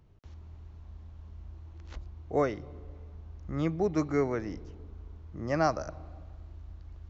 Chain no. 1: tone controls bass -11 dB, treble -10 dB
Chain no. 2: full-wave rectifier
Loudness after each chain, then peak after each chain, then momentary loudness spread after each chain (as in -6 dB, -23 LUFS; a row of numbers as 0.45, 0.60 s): -33.5, -35.5 LUFS; -14.5, -14.0 dBFS; 17, 21 LU